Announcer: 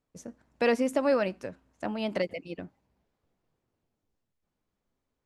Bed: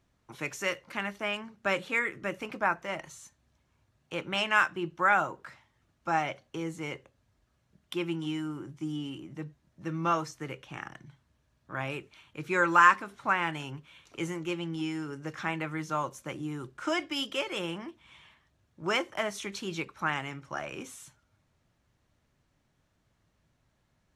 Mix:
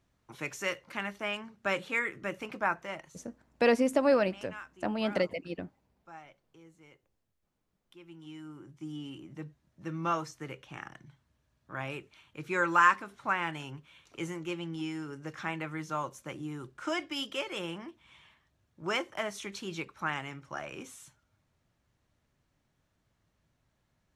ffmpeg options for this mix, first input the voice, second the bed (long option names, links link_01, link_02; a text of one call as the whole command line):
ffmpeg -i stem1.wav -i stem2.wav -filter_complex "[0:a]adelay=3000,volume=0.5dB[link_01];[1:a]volume=16dB,afade=type=out:start_time=2.79:duration=0.48:silence=0.112202,afade=type=in:start_time=8.03:duration=1.29:silence=0.125893[link_02];[link_01][link_02]amix=inputs=2:normalize=0" out.wav